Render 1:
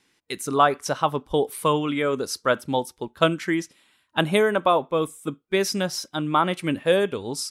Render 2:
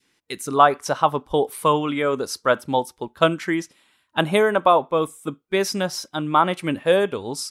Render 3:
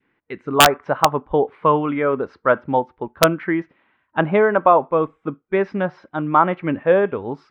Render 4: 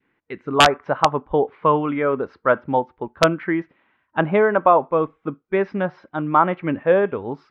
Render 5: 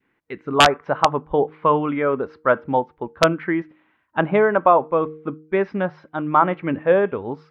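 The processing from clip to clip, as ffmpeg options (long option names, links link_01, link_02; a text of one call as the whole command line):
ffmpeg -i in.wav -af "adynamicequalizer=threshold=0.0316:dfrequency=870:dqfactor=0.91:tfrequency=870:tqfactor=0.91:attack=5:release=100:ratio=0.375:range=2.5:mode=boostabove:tftype=bell" out.wav
ffmpeg -i in.wav -af "lowpass=frequency=2100:width=0.5412,lowpass=frequency=2100:width=1.3066,aeval=exprs='(mod(1.5*val(0)+1,2)-1)/1.5':channel_layout=same,volume=2.5dB" out.wav
ffmpeg -i in.wav -af "lowpass=5700,volume=-1dB" out.wav
ffmpeg -i in.wav -af "bandreject=frequency=155.1:width_type=h:width=4,bandreject=frequency=310.2:width_type=h:width=4,bandreject=frequency=465.3:width_type=h:width=4" out.wav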